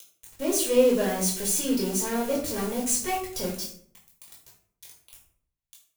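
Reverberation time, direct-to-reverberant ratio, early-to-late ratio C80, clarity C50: 0.60 s, −5.0 dB, 9.5 dB, 6.0 dB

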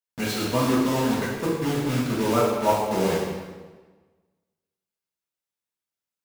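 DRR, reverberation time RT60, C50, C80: −8.0 dB, 1.3 s, 0.5 dB, 3.0 dB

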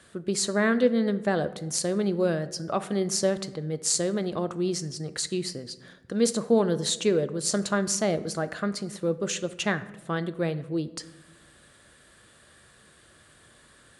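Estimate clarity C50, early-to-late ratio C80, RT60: 15.5 dB, 18.0 dB, 1.1 s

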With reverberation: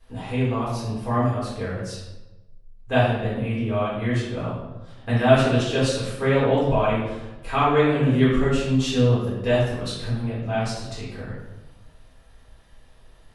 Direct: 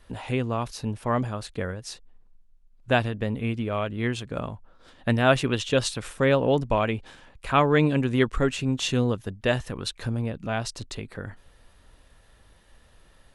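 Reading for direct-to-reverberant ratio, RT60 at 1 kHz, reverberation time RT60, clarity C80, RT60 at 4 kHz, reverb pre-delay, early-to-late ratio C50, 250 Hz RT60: −9.5 dB, 0.95 s, 1.0 s, 3.5 dB, 0.70 s, 4 ms, 0.5 dB, 1.2 s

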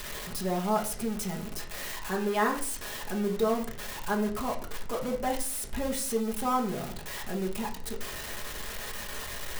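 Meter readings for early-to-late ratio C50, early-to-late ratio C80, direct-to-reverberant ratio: 10.5 dB, 14.5 dB, −1.5 dB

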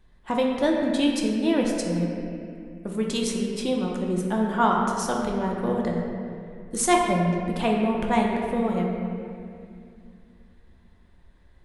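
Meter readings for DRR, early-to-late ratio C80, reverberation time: −1.0 dB, 2.5 dB, 2.4 s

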